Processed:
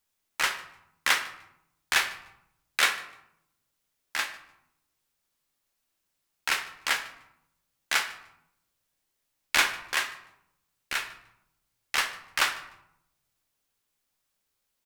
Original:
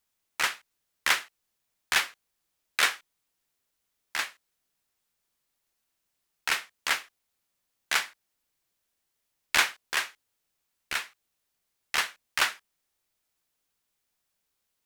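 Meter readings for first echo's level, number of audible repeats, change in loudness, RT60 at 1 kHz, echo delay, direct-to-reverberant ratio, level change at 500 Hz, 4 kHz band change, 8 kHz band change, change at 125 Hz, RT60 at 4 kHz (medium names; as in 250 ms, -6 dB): -22.5 dB, 1, +0.5 dB, 0.80 s, 150 ms, 6.5 dB, +1.0 dB, +0.5 dB, +0.5 dB, no reading, 0.60 s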